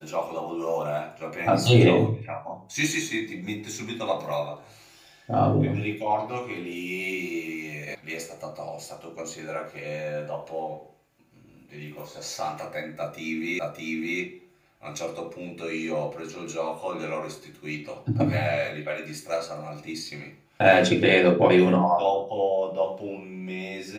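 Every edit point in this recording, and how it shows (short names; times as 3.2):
7.95 sound cut off
13.59 repeat of the last 0.61 s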